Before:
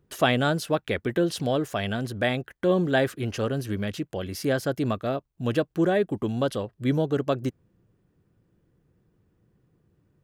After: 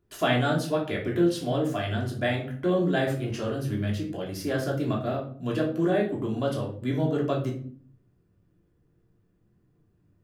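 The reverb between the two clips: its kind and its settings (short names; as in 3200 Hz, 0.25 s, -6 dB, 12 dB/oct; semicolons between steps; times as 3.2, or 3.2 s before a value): shoebox room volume 450 m³, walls furnished, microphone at 3.1 m; gain -7 dB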